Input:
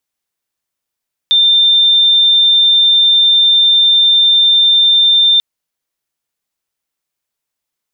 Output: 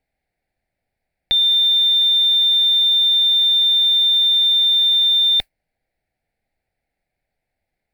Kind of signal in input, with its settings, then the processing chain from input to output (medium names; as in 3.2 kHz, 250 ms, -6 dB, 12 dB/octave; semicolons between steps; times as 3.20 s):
tone sine 3.59 kHz -6 dBFS 4.09 s
tilt EQ -4.5 dB/octave; modulation noise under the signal 32 dB; FFT filter 380 Hz 0 dB, 540 Hz +6 dB, 770 Hz +12 dB, 1.1 kHz -13 dB, 1.6 kHz +7 dB, 2.2 kHz +14 dB, 3.1 kHz -1 dB, 4.4 kHz +7 dB, 6.3 kHz -6 dB, 8.9 kHz +4 dB